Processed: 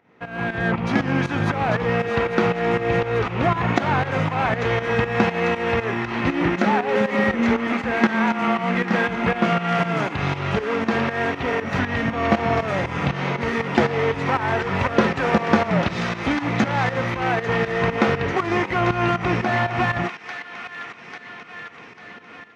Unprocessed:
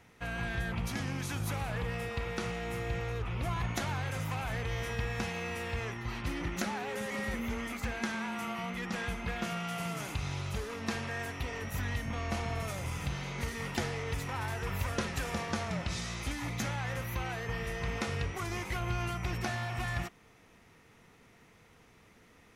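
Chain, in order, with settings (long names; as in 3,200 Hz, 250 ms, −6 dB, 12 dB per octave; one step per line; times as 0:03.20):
head-to-tape spacing loss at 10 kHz 35 dB
delay with a high-pass on its return 845 ms, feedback 63%, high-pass 1,500 Hz, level −6 dB
in parallel at −10.5 dB: dead-zone distortion −46.5 dBFS
on the sum: automatic gain control gain up to 10 dB
high-pass filter 200 Hz 12 dB per octave
fake sidechain pumping 119 BPM, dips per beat 2, −12 dB, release 217 ms
boost into a limiter +11 dB
level −1 dB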